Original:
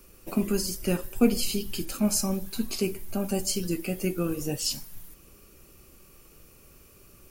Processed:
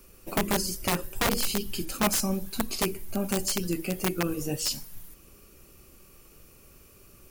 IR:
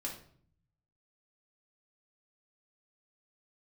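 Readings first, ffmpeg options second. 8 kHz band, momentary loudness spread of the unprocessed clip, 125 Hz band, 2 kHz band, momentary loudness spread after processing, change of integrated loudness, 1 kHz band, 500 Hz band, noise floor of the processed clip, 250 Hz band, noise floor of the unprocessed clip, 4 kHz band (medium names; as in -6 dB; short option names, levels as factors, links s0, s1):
+0.5 dB, 8 LU, -1.0 dB, +6.5 dB, 7 LU, 0.0 dB, +8.0 dB, -1.5 dB, -55 dBFS, -3.5 dB, -55 dBFS, +1.5 dB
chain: -af "bandreject=f=158.6:t=h:w=4,bandreject=f=317.2:t=h:w=4,bandreject=f=475.8:t=h:w=4,aeval=exprs='(mod(7.94*val(0)+1,2)-1)/7.94':c=same"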